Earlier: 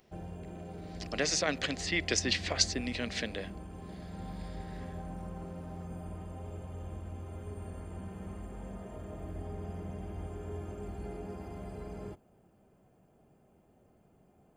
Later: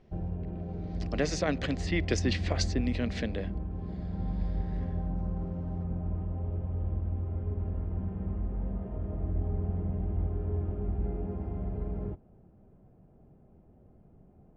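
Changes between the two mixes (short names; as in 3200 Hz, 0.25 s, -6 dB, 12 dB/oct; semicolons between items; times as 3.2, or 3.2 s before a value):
background: add air absorption 330 m; master: add tilt -3 dB/oct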